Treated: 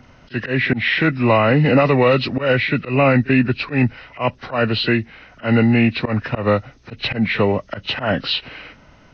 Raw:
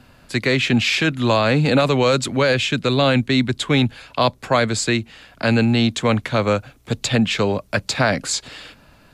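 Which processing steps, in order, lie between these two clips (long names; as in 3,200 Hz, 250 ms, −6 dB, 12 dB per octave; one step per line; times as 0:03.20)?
hearing-aid frequency compression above 1,200 Hz 1.5 to 1
volume swells 124 ms
echo ahead of the sound 38 ms −21 dB
level +2.5 dB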